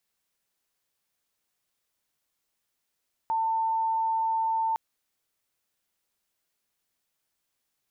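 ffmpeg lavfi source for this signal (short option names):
-f lavfi -i "aevalsrc='0.0668*sin(2*PI*896*t)':d=1.46:s=44100"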